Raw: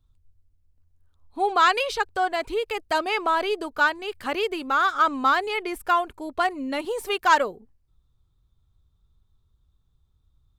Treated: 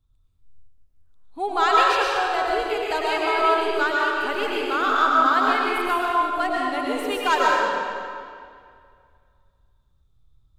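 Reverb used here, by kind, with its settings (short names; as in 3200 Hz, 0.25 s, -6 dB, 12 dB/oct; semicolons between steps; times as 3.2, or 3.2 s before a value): digital reverb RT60 2.2 s, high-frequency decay 0.85×, pre-delay 75 ms, DRR -4.5 dB; gain -3.5 dB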